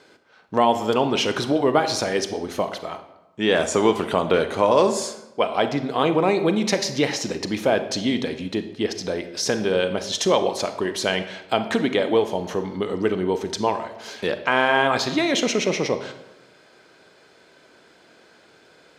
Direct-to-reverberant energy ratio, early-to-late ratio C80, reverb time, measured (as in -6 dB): 9.0 dB, 13.0 dB, 1.0 s